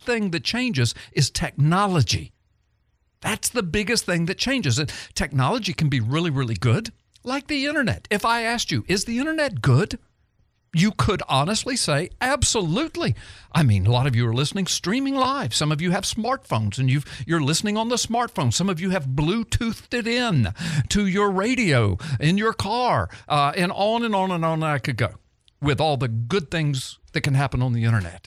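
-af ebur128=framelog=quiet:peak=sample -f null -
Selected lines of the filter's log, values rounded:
Integrated loudness:
  I:         -22.3 LUFS
  Threshold: -32.6 LUFS
Loudness range:
  LRA:         2.2 LU
  Threshold: -42.6 LUFS
  LRA low:   -23.6 LUFS
  LRA high:  -21.4 LUFS
Sample peak:
  Peak:       -6.1 dBFS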